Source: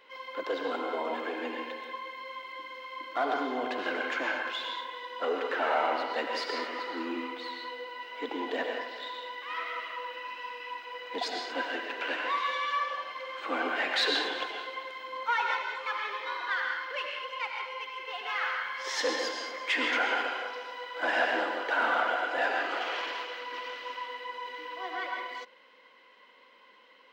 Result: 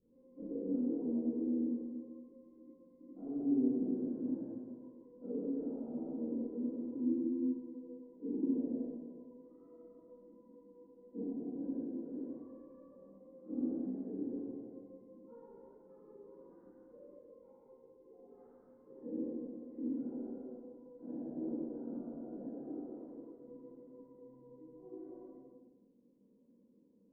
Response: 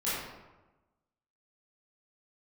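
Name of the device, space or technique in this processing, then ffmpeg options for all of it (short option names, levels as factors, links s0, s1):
club heard from the street: -filter_complex "[0:a]alimiter=limit=0.0668:level=0:latency=1:release=40,lowpass=f=240:w=0.5412,lowpass=f=240:w=1.3066[s0];[1:a]atrim=start_sample=2205[s1];[s0][s1]afir=irnorm=-1:irlink=0,volume=1.88"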